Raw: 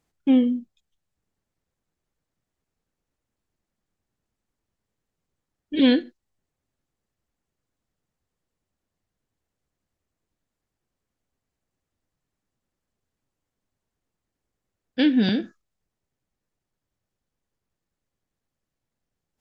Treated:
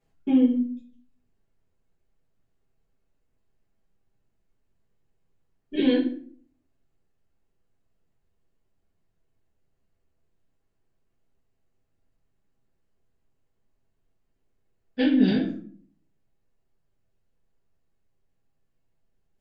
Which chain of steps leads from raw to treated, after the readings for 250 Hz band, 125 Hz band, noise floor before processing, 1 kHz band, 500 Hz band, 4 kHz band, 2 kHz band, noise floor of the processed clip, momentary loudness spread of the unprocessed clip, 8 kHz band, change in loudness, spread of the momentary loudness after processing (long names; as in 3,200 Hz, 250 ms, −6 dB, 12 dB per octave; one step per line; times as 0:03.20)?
−1.0 dB, 0.0 dB, −85 dBFS, −2.5 dB, −0.5 dB, −6.5 dB, −4.0 dB, −74 dBFS, 12 LU, can't be measured, −2.0 dB, 19 LU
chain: high-shelf EQ 4,500 Hz −9 dB
downward compressor, threshold −21 dBFS, peak gain reduction 8 dB
rectangular room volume 43 cubic metres, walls mixed, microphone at 1.5 metres
level −6 dB